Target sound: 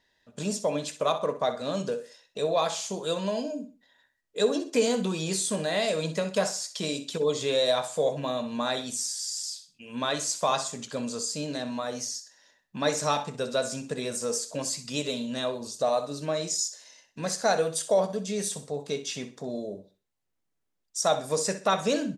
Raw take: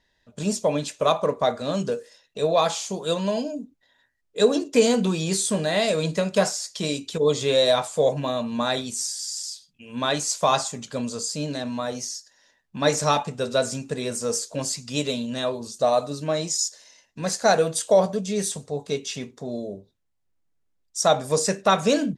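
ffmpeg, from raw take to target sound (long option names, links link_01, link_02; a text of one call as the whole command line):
ffmpeg -i in.wav -filter_complex "[0:a]lowshelf=frequency=100:gain=-11.5,asplit=2[link_01][link_02];[link_02]acompressor=threshold=-31dB:ratio=6,volume=1dB[link_03];[link_01][link_03]amix=inputs=2:normalize=0,aecho=1:1:63|126|189:0.224|0.0694|0.0215,volume=-7dB" out.wav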